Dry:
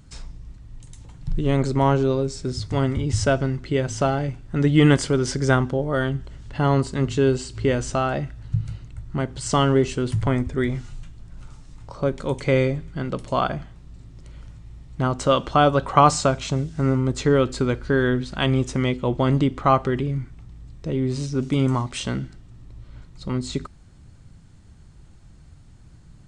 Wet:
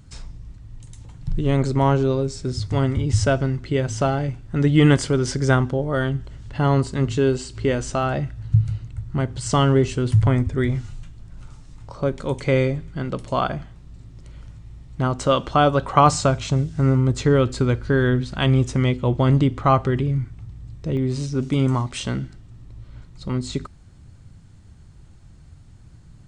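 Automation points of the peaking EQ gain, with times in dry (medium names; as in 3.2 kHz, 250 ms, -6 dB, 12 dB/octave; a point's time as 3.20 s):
peaking EQ 98 Hz
+5 dB
from 7.19 s -1.5 dB
from 8.03 s +9.5 dB
from 10.92 s +3 dB
from 16.06 s +10.5 dB
from 20.97 s +4 dB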